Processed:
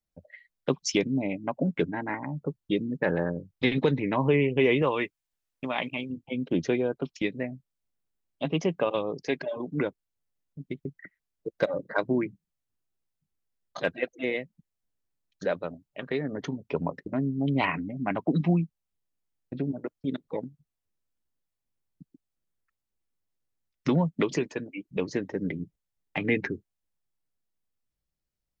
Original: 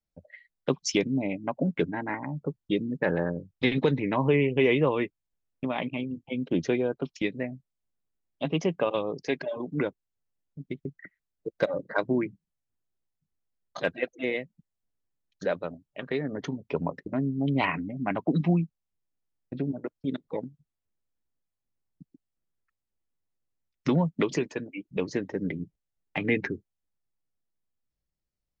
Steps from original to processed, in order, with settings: 4.82–6.10 s: tilt shelf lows -5 dB, about 670 Hz

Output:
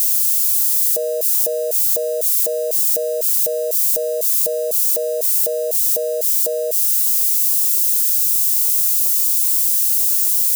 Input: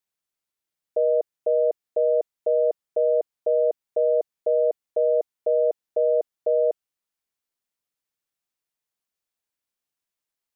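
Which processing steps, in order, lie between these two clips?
zero-crossing glitches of -30.5 dBFS; peak limiter -21.5 dBFS, peak gain reduction 7.5 dB; tone controls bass +10 dB, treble +13 dB; trim +6 dB

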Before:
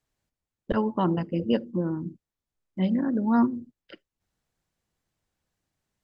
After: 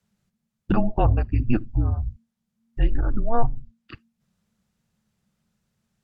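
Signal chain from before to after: bass shelf 130 Hz +8 dB; frequency shift -230 Hz; low-pass that closes with the level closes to 2.1 kHz, closed at -18 dBFS; trim +4.5 dB

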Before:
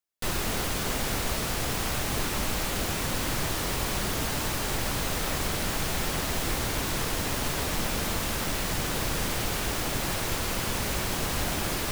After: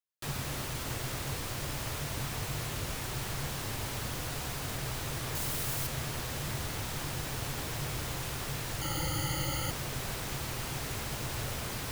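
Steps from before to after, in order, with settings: 8.81–9.71 s: rippled EQ curve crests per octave 1.8, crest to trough 17 dB; frequency shift -150 Hz; 5.35–5.87 s: treble shelf 7.7 kHz +9.5 dB; trim -7.5 dB

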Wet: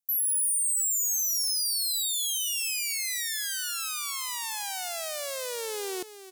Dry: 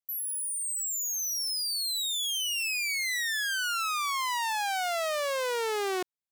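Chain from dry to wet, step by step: FFT filter 300 Hz 0 dB, 1.2 kHz -9 dB, 9.9 kHz +9 dB; on a send: delay 334 ms -13 dB; on the sum: trim -2 dB

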